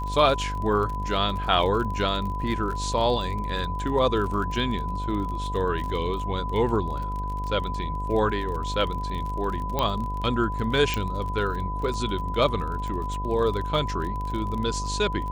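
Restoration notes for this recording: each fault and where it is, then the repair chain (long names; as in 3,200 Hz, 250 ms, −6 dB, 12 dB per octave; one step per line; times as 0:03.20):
mains buzz 50 Hz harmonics 19 −31 dBFS
surface crackle 35 per second −31 dBFS
whistle 1,000 Hz −31 dBFS
0:09.79: click −10 dBFS
0:10.94: click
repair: click removal
notch filter 1,000 Hz, Q 30
hum removal 50 Hz, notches 19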